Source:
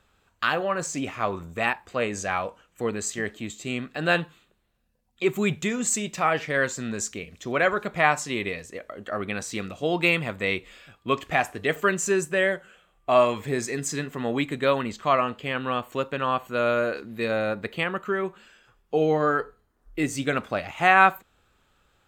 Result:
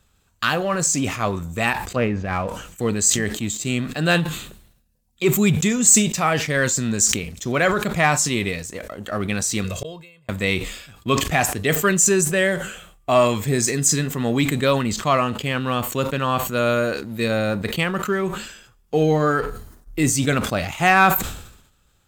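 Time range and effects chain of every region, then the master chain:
0:01.96–0:02.48: low-pass filter 2,600 Hz 24 dB per octave + transient designer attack −8 dB, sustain −2 dB + low-shelf EQ 420 Hz +4 dB
0:09.64–0:10.29: comb filter 1.9 ms, depth 97% + gate with flip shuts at −20 dBFS, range −38 dB + floating-point word with a short mantissa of 8 bits
whole clip: bass and treble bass +9 dB, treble +12 dB; leveller curve on the samples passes 1; level that may fall only so fast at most 72 dB per second; level −1.5 dB

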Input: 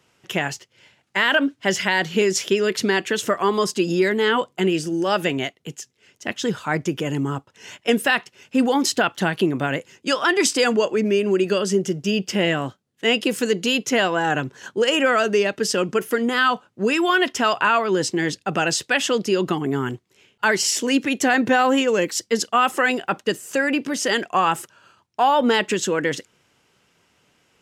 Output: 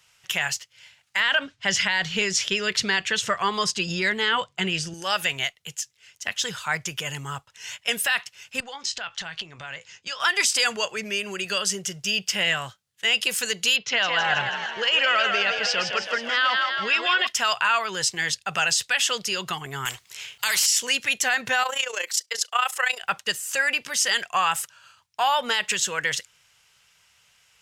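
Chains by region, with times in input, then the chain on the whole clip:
0:01.20–0:04.94: low-pass filter 6,300 Hz + low-shelf EQ 320 Hz +10 dB
0:08.60–0:10.20: double-tracking delay 18 ms −13 dB + downward compressor 4 to 1, threshold −29 dBFS + low-pass filter 6,700 Hz 24 dB per octave
0:13.76–0:17.27: low-pass filter 4,700 Hz 24 dB per octave + echo with shifted repeats 161 ms, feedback 61%, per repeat +40 Hz, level −6 dB
0:19.85–0:20.66: high-pass filter 41 Hz + low-shelf EQ 360 Hz −6.5 dB + every bin compressed towards the loudest bin 2 to 1
0:21.63–0:23.03: high-pass filter 380 Hz 24 dB per octave + amplitude modulation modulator 29 Hz, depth 60%
whole clip: guitar amp tone stack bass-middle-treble 10-0-10; brickwall limiter −17.5 dBFS; level +6.5 dB

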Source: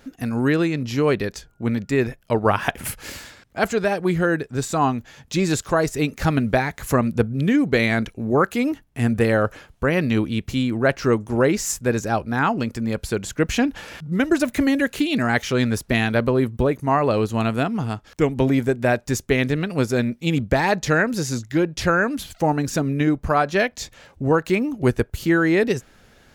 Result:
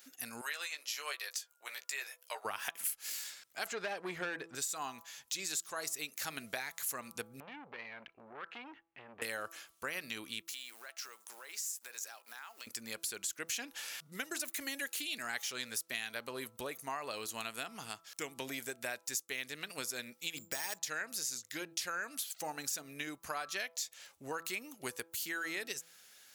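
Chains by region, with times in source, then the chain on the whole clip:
0:00.41–0:02.45: high-pass filter 590 Hz 24 dB per octave + double-tracking delay 14 ms −6 dB
0:03.66–0:04.55: spectral tilt −3 dB per octave + mid-hump overdrive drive 16 dB, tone 2,500 Hz, clips at −4.5 dBFS
0:07.40–0:09.22: low-pass filter 2,500 Hz 24 dB per octave + downward compressor 8 to 1, threshold −24 dBFS + saturating transformer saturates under 730 Hz
0:10.42–0:12.67: mu-law and A-law mismatch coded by A + high-pass filter 660 Hz + downward compressor 4 to 1, threshold −37 dBFS
0:20.37–0:20.78: bad sample-rate conversion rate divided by 6×, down none, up hold + high-shelf EQ 6,800 Hz −9 dB
whole clip: first difference; hum removal 165.8 Hz, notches 8; downward compressor 3 to 1, threshold −41 dBFS; level +3.5 dB

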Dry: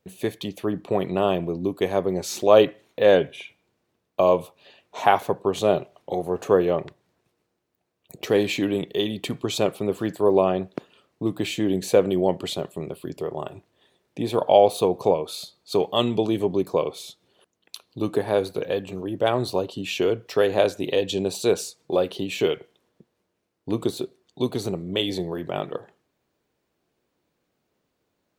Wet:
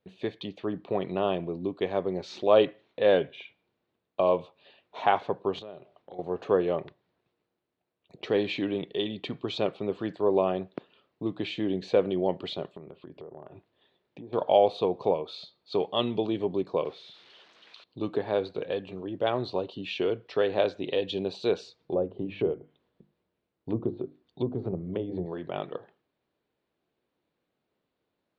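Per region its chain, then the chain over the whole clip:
0:05.59–0:06.19: downward compressor 3 to 1, threshold −39 dBFS + one half of a high-frequency compander decoder only
0:12.77–0:14.33: treble cut that deepens with the level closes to 840 Hz, closed at −25 dBFS + downward compressor 4 to 1, threshold −35 dBFS
0:16.85–0:17.84: spike at every zero crossing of −27 dBFS + high-shelf EQ 3,700 Hz −11 dB + bad sample-rate conversion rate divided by 3×, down filtered, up hold
0:21.67–0:25.26: mains-hum notches 50/100/150/200/250/300/350 Hz + treble cut that deepens with the level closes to 680 Hz, closed at −22.5 dBFS + low-shelf EQ 130 Hz +11.5 dB
whole clip: Chebyshev low-pass filter 4,000 Hz, order 3; low-shelf EQ 130 Hz −5 dB; level −5 dB

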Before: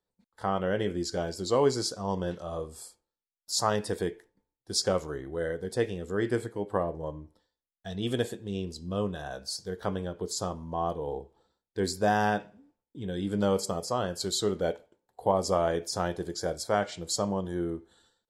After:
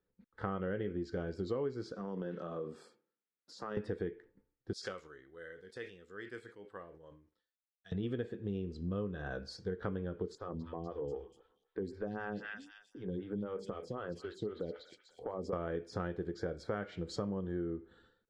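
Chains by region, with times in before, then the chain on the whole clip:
0:01.92–0:03.77: high-pass filter 160 Hz 24 dB per octave + downward compressor 5 to 1, threshold −37 dBFS
0:04.73–0:07.92: first-order pre-emphasis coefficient 0.97 + level that may fall only so fast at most 110 dB per second
0:10.35–0:15.53: echo through a band-pass that steps 243 ms, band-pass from 2,700 Hz, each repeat 0.7 octaves, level −2.5 dB + downward compressor 2.5 to 1, threshold −37 dBFS + phaser with staggered stages 3.9 Hz
whole clip: low-pass filter 1,800 Hz 12 dB per octave; flat-topped bell 790 Hz −9.5 dB 1 octave; downward compressor 6 to 1, threshold −39 dBFS; level +4.5 dB

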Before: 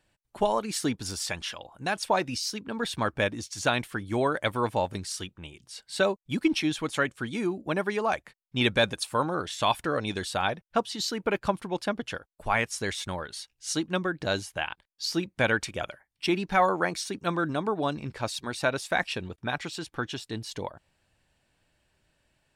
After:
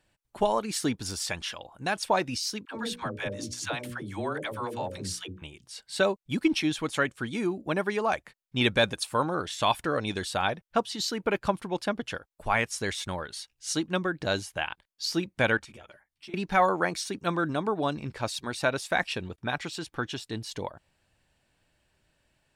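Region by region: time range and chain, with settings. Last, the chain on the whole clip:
0:02.65–0:05.42: mains-hum notches 60/120/180/240/300/360/420/480/540/600 Hz + downward compressor 2.5 to 1, threshold −30 dBFS + all-pass dispersion lows, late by 89 ms, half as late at 460 Hz
0:15.57–0:16.34: downward compressor 8 to 1, threshold −40 dBFS + string-ensemble chorus
whole clip: no processing

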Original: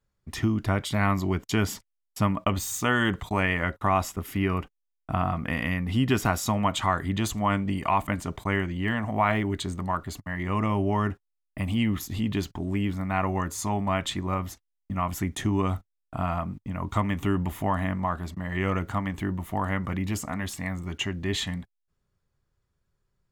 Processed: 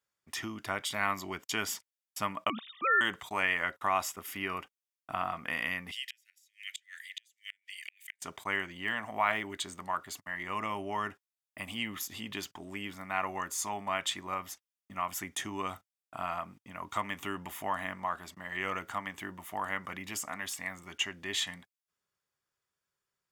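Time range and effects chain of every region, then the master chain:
0:02.50–0:03.01: three sine waves on the formant tracks + parametric band 220 Hz +8 dB 0.82 octaves
0:05.91–0:08.22: Butterworth high-pass 1,800 Hz 72 dB per octave + gate with flip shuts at −24 dBFS, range −33 dB
whole clip: high-pass filter 1,400 Hz 6 dB per octave; notch filter 4,100 Hz, Q 11

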